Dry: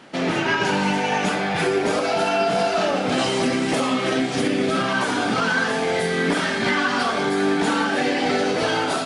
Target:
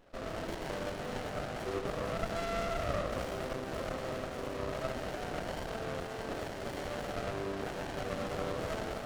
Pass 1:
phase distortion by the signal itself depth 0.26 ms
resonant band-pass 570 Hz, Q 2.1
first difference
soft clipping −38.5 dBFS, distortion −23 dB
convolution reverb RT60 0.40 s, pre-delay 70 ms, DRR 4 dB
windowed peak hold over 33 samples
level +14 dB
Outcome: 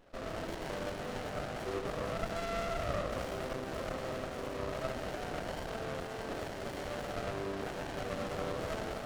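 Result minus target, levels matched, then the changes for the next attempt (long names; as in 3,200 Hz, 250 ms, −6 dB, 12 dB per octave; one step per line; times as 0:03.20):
soft clipping: distortion +22 dB
change: soft clipping −26.5 dBFS, distortion −45 dB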